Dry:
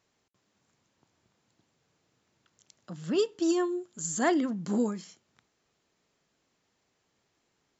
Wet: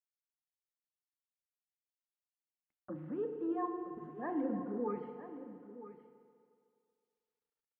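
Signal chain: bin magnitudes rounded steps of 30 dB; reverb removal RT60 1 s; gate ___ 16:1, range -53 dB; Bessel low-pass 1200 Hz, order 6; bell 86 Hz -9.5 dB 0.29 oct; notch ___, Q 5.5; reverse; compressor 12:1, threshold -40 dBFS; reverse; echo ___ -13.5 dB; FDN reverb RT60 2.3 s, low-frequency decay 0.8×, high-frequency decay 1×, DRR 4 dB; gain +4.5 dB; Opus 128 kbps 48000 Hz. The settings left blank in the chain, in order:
-56 dBFS, 170 Hz, 0.967 s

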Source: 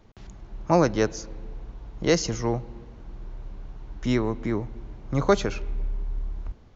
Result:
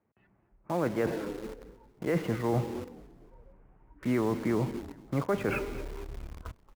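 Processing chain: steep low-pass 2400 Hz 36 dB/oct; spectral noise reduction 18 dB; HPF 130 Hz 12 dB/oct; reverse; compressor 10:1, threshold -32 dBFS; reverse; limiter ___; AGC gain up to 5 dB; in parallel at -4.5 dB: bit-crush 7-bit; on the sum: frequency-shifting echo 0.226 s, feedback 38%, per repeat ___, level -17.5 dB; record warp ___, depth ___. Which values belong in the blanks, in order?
-28 dBFS, -36 Hz, 33 1/3 rpm, 100 cents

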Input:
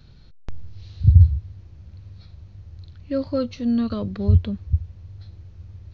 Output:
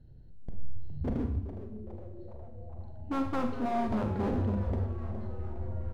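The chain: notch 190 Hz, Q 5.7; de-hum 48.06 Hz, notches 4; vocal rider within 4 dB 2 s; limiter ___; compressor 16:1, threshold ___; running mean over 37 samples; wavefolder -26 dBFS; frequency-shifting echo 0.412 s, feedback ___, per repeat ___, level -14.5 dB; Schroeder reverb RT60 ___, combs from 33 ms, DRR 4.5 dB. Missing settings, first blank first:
-8.5 dBFS, -20 dBFS, 57%, +140 Hz, 0.64 s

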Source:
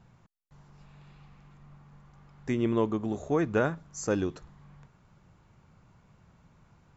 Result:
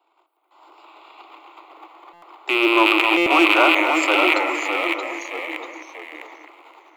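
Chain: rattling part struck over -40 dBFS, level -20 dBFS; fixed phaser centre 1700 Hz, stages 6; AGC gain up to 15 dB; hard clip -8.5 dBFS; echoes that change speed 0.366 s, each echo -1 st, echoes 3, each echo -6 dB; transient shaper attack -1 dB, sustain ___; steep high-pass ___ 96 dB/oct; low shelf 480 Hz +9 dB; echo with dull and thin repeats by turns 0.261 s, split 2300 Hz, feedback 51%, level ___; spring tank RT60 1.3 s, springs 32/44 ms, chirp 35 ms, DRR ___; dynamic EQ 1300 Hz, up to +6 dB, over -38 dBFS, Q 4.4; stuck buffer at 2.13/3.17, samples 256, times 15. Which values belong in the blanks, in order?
+11 dB, 320 Hz, -7.5 dB, 14.5 dB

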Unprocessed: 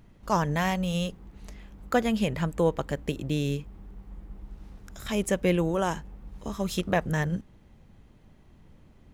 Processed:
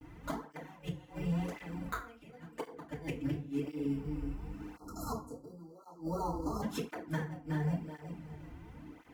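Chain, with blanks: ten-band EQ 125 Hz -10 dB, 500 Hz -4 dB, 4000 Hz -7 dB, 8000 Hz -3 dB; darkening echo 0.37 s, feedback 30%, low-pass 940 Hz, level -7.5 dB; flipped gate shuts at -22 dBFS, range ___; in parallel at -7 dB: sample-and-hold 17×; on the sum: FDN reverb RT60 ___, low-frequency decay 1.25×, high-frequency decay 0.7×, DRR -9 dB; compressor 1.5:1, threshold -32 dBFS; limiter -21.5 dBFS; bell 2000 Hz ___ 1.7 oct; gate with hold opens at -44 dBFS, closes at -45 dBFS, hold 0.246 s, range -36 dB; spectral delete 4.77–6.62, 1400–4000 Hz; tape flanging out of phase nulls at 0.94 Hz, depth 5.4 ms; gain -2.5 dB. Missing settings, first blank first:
-33 dB, 0.36 s, +5.5 dB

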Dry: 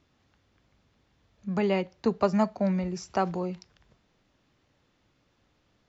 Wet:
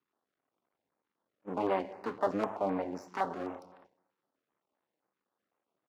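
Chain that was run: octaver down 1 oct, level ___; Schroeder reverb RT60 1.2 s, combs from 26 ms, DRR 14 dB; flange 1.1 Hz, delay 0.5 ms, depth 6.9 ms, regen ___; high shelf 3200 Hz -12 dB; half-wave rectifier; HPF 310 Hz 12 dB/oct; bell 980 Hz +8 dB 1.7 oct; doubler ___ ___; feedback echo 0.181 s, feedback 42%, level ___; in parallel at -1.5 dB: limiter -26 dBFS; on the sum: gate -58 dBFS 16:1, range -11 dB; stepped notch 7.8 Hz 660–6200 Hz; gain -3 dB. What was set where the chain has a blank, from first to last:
+2 dB, -44%, 26 ms, -14 dB, -23.5 dB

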